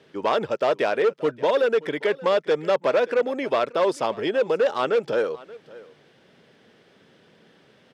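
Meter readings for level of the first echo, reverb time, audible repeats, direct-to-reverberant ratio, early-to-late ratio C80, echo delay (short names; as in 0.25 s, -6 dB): -20.5 dB, none, 1, none, none, 0.579 s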